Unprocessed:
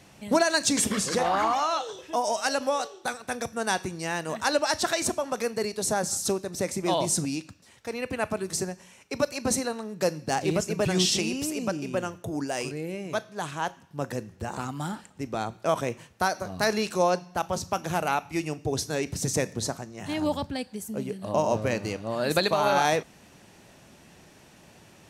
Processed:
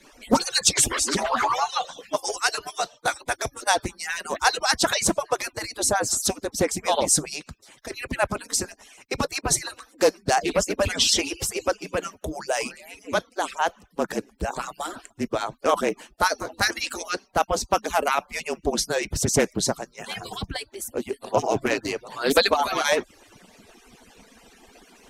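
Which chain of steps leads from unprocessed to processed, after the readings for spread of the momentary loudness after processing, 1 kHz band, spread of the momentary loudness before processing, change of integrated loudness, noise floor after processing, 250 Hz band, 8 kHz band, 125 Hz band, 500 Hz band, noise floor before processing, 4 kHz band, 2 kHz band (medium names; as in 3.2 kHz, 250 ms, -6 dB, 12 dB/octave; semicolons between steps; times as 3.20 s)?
12 LU, +3.0 dB, 10 LU, +3.5 dB, -59 dBFS, -0.5 dB, +5.5 dB, -2.0 dB, +2.0 dB, -54 dBFS, +5.5 dB, +4.5 dB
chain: harmonic-percussive separation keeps percussive; frequency shift -34 Hz; loudspeaker Doppler distortion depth 0.31 ms; trim +7 dB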